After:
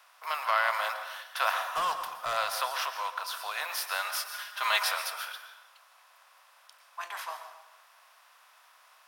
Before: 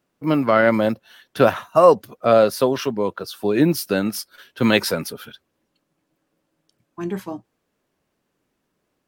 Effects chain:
compressor on every frequency bin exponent 0.6
Butterworth high-pass 810 Hz 36 dB per octave
0:01.70–0:02.37: gain into a clipping stage and back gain 18 dB
0:03.98–0:04.89: comb filter 4.9 ms, depth 66%
dense smooth reverb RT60 1 s, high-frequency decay 0.75×, pre-delay 105 ms, DRR 8 dB
level −8.5 dB

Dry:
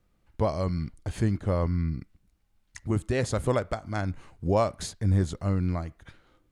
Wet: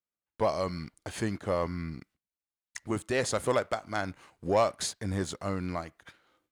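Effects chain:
high-pass filter 570 Hz 6 dB per octave
noise gate with hold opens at −58 dBFS
leveller curve on the samples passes 1

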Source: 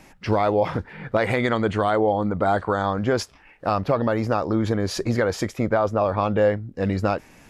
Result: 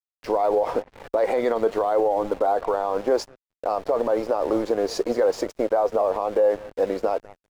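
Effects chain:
flat-topped bell 2,100 Hz −8.5 dB
in parallel at −5 dB: bit reduction 6 bits
on the sum: high-pass filter 420 Hz 24 dB per octave
on a send: bucket-brigade delay 194 ms, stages 4,096, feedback 35%, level −23.5 dB
on the sum: flanger 0.91 Hz, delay 3.3 ms, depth 1.2 ms, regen +76%
dead-zone distortion −46 dBFS
brickwall limiter −22 dBFS, peak gain reduction 11 dB
spectral tilt −3 dB per octave
level +7 dB

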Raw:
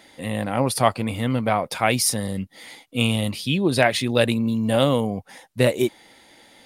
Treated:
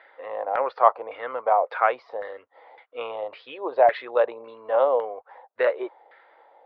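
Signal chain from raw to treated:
elliptic band-pass filter 460–4,300 Hz, stop band 40 dB
auto-filter low-pass saw down 1.8 Hz 740–1,700 Hz
level −2 dB

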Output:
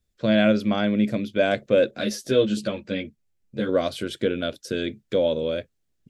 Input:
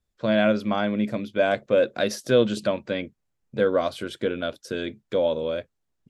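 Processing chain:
parametric band 970 Hz −9 dB 1.2 octaves
0:01.91–0:03.69: string-ensemble chorus
level +4 dB

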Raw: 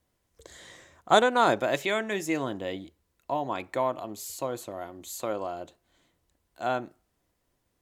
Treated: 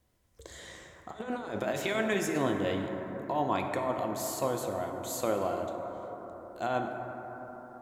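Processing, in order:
low-shelf EQ 190 Hz +4 dB
compressor whose output falls as the input rises −28 dBFS, ratio −0.5
dense smooth reverb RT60 4.7 s, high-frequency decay 0.25×, pre-delay 0 ms, DRR 3 dB
level −2.5 dB

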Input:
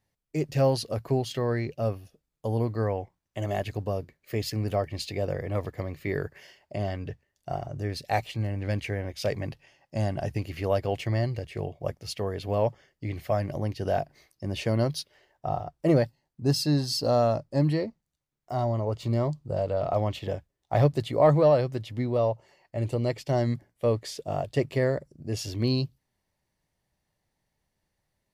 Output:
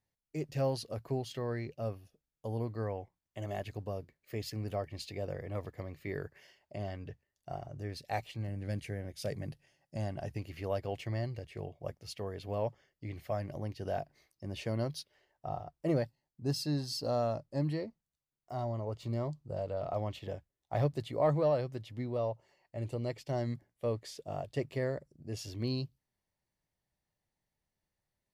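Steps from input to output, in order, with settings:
0:08.48–0:09.97: graphic EQ with 15 bands 160 Hz +6 dB, 1,000 Hz −6 dB, 2,500 Hz −4 dB, 10,000 Hz +8 dB
level −9 dB

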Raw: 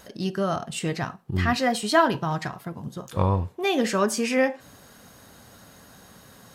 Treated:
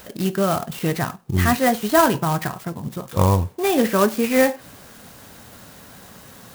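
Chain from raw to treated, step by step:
de-essing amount 90%
high-shelf EQ 9,300 Hz +9.5 dB
converter with an unsteady clock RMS 0.045 ms
level +5.5 dB

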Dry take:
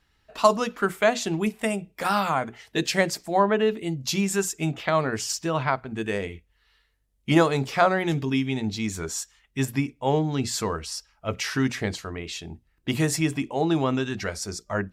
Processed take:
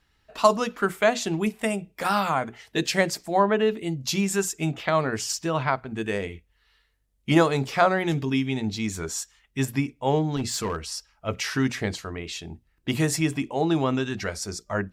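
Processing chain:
0:10.36–0:10.86: gain into a clipping stage and back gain 22.5 dB

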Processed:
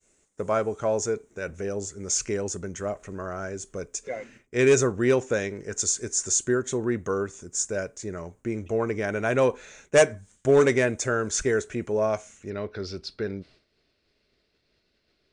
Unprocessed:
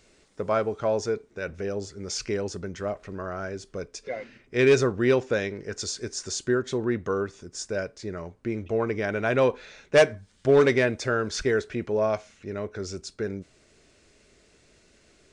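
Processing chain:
high shelf with overshoot 5,700 Hz +6.5 dB, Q 3, from 0:12.50 −8 dB
downward expander −49 dBFS

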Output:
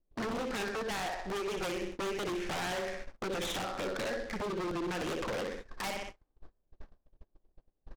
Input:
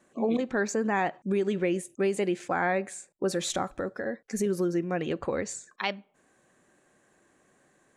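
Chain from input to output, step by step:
background noise brown −50 dBFS
downsampling to 8,000 Hz
in parallel at −7 dB: soft clipping −26.5 dBFS, distortion −11 dB
on the sum: parametric band 110 Hz −13.5 dB 2.3 octaves
flutter between parallel walls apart 10.7 metres, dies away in 0.5 s
noise gate −44 dBFS, range −31 dB
0:00.83–0:01.82: parametric band 240 Hz −14.5 dB 0.94 octaves
downward compressor 6 to 1, threshold −32 dBFS, peak gain reduction 10.5 dB
low-pass that shuts in the quiet parts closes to 480 Hz, open at −35 dBFS
wave folding −34.5 dBFS
regular buffer underruns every 0.31 s, samples 64, repeat, from 0:00.37
short delay modulated by noise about 2,800 Hz, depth 0.032 ms
level +4.5 dB

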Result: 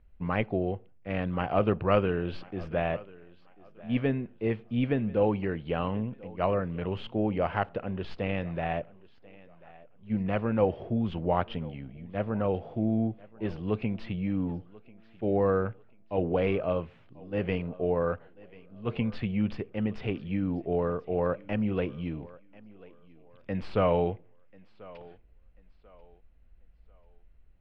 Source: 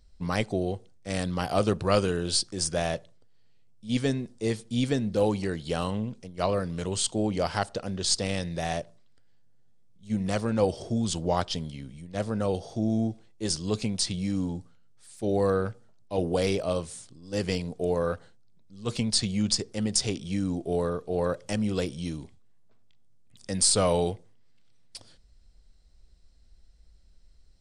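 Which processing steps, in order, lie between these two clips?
Chebyshev low-pass filter 2,700 Hz, order 4
on a send: feedback echo with a high-pass in the loop 1,040 ms, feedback 33%, high-pass 190 Hz, level −21 dB

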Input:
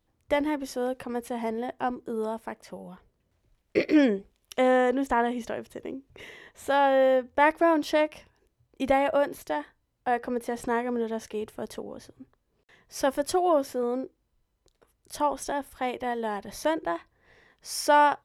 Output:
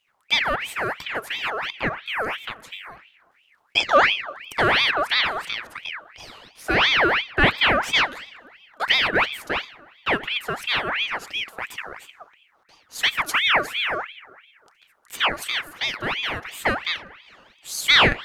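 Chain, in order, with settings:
rectangular room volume 2,400 cubic metres, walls mixed, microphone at 0.38 metres
ring modulator whose carrier an LFO sweeps 1,900 Hz, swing 55%, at 2.9 Hz
level +6 dB

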